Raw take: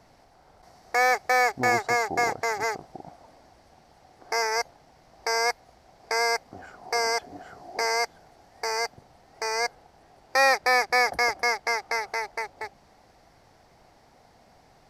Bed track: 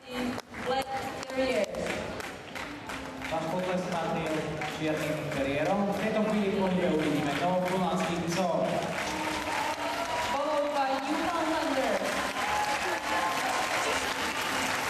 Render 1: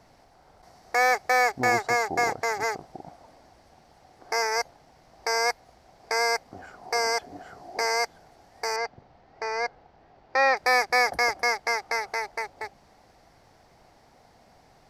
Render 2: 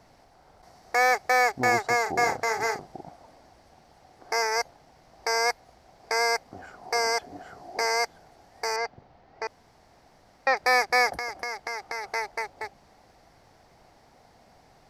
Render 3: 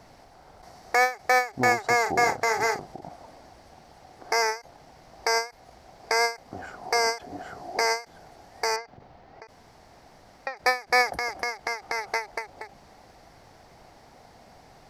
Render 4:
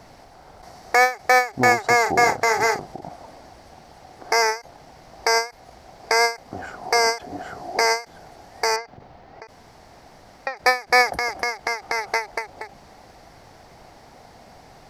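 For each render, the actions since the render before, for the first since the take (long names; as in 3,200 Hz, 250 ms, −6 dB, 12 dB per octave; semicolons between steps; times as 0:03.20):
0:08.76–0:10.57: high-frequency loss of the air 180 metres
0:02.02–0:03.03: double-tracking delay 40 ms −8 dB; 0:09.47–0:10.47: fill with room tone; 0:11.12–0:12.04: downward compressor 5 to 1, threshold −29 dBFS
in parallel at −2 dB: downward compressor, threshold −31 dBFS, peak gain reduction 13 dB; on the sum: every ending faded ahead of time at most 200 dB per second
level +5 dB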